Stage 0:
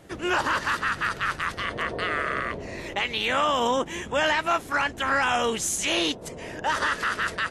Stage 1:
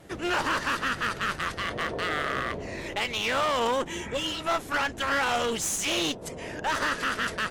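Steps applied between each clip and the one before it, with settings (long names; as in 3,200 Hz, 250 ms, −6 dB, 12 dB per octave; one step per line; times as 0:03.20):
healed spectral selection 0:03.95–0:04.39, 570–2,600 Hz both
pitch vibrato 2.4 Hz 31 cents
asymmetric clip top −29 dBFS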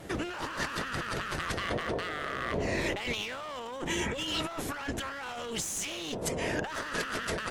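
compressor whose output falls as the input rises −35 dBFS, ratio −1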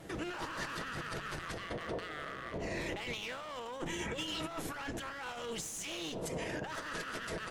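brickwall limiter −28 dBFS, peak gain reduction 10 dB
rectangular room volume 2,400 cubic metres, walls furnished, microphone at 0.65 metres
expander for the loud parts 1.5 to 1, over −42 dBFS
level −1.5 dB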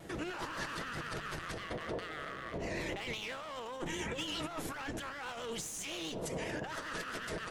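pitch vibrato 7.6 Hz 61 cents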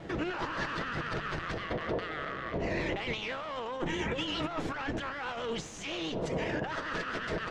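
high-frequency loss of the air 150 metres
level +6.5 dB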